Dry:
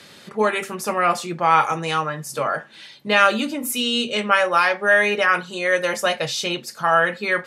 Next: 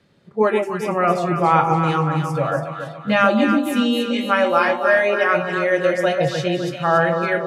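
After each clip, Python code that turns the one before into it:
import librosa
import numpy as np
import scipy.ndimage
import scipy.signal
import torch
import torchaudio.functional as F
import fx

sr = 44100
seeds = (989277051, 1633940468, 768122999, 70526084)

y = fx.noise_reduce_blind(x, sr, reduce_db=15)
y = fx.tilt_eq(y, sr, slope=-3.5)
y = fx.echo_alternate(y, sr, ms=140, hz=860.0, feedback_pct=68, wet_db=-3)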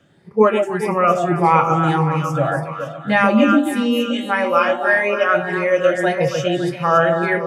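y = fx.spec_ripple(x, sr, per_octave=0.86, drift_hz=1.7, depth_db=9)
y = fx.peak_eq(y, sr, hz=4100.0, db=-10.5, octaves=0.25)
y = fx.rider(y, sr, range_db=4, speed_s=2.0)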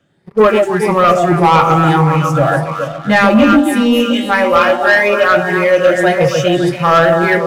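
y = fx.leveller(x, sr, passes=2)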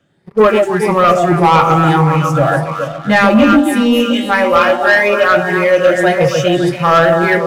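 y = x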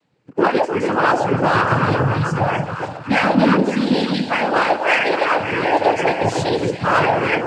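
y = fx.noise_vocoder(x, sr, seeds[0], bands=8)
y = F.gain(torch.from_numpy(y), -6.0).numpy()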